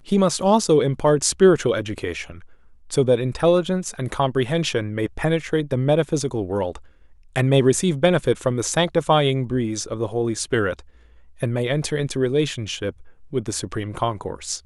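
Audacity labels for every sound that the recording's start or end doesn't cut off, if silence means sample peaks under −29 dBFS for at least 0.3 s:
2.900000	6.760000	sound
7.360000	10.800000	sound
11.420000	12.900000	sound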